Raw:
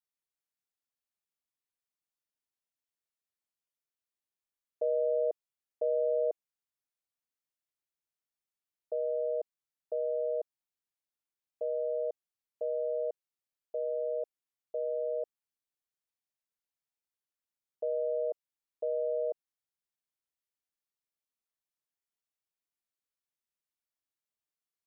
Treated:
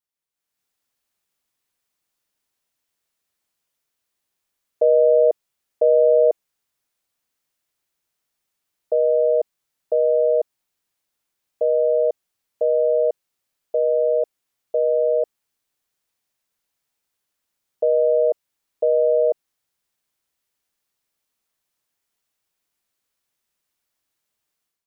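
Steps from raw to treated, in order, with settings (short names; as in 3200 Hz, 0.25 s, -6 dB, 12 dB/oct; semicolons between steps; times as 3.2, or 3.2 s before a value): AGC gain up to 12 dB; gain +2.5 dB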